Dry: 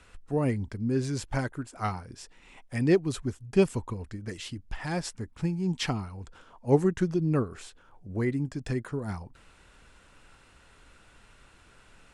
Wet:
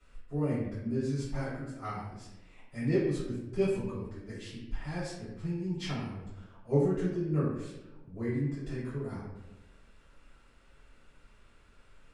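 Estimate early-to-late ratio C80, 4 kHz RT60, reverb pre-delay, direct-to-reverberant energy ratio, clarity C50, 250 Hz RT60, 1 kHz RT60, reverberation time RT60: 4.0 dB, 0.60 s, 3 ms, −14.5 dB, 0.5 dB, 1.3 s, 0.85 s, 1.0 s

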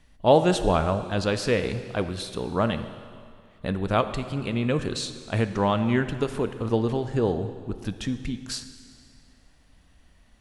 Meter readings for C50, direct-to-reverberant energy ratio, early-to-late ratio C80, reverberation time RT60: 11.0 dB, 9.5 dB, 11.5 dB, 2.2 s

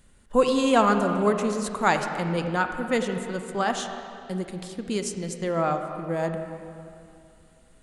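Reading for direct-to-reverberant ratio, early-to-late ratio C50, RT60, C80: 6.0 dB, 6.5 dB, 2.6 s, 7.0 dB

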